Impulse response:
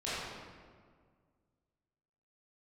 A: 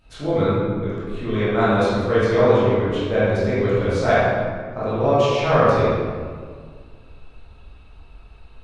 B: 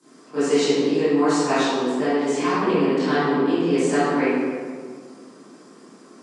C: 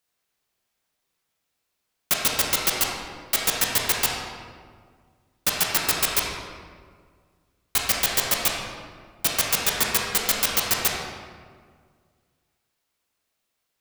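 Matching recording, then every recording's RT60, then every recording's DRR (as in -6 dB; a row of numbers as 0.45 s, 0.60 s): A; 1.8 s, 1.8 s, 1.8 s; -12.0 dB, -18.0 dB, -2.5 dB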